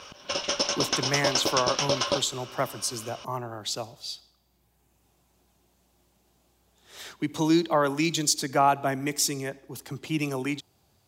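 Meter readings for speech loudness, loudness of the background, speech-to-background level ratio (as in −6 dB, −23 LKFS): −28.0 LKFS, −26.5 LKFS, −1.5 dB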